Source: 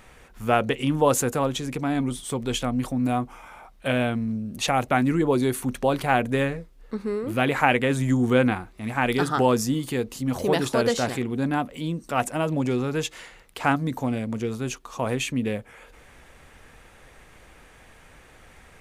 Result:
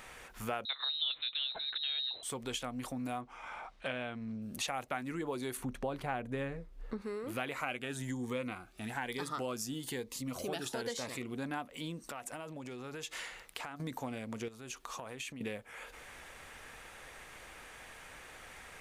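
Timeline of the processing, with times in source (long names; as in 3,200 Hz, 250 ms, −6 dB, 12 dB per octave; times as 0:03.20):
0:00.65–0:02.23: voice inversion scrambler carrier 4,000 Hz
0:03.21–0:04.42: low-pass filter 5,300 Hz
0:05.57–0:07.02: spectral tilt −2.5 dB per octave
0:07.54–0:11.34: phaser whose notches keep moving one way rising 1.1 Hz
0:12.05–0:13.80: downward compressor 12 to 1, threshold −36 dBFS
0:14.48–0:15.41: downward compressor 5 to 1, threshold −39 dBFS
whole clip: low-shelf EQ 420 Hz −11 dB; downward compressor 3 to 1, threshold −42 dBFS; level +2.5 dB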